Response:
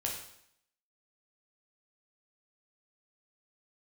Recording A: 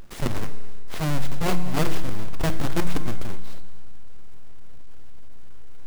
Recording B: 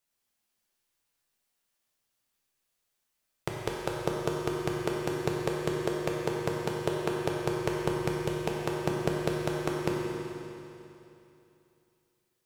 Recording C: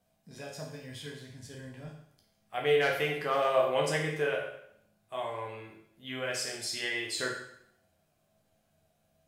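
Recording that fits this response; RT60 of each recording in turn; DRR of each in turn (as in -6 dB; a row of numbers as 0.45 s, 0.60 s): C; 1.7 s, 2.9 s, 0.70 s; 9.5 dB, -2.5 dB, -2.0 dB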